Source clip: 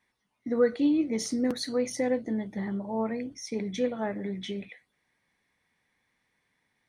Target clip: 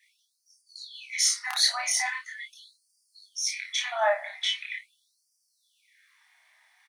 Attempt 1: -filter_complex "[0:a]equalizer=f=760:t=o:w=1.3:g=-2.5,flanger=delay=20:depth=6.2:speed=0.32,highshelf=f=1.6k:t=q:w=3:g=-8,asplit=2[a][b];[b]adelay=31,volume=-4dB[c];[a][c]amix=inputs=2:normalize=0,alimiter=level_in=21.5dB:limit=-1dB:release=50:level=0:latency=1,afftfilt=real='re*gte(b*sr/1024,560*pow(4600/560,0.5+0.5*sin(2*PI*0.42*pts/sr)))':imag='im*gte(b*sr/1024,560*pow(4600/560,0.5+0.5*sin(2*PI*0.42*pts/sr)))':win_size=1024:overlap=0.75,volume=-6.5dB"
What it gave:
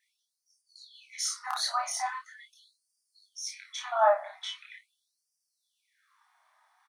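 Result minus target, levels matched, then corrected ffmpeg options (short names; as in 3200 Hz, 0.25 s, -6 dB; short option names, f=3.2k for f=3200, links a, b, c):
4000 Hz band -5.5 dB
-filter_complex "[0:a]equalizer=f=760:t=o:w=1.3:g=-2.5,flanger=delay=20:depth=6.2:speed=0.32,asplit=2[a][b];[b]adelay=31,volume=-4dB[c];[a][c]amix=inputs=2:normalize=0,alimiter=level_in=21.5dB:limit=-1dB:release=50:level=0:latency=1,afftfilt=real='re*gte(b*sr/1024,560*pow(4600/560,0.5+0.5*sin(2*PI*0.42*pts/sr)))':imag='im*gte(b*sr/1024,560*pow(4600/560,0.5+0.5*sin(2*PI*0.42*pts/sr)))':win_size=1024:overlap=0.75,volume=-6.5dB"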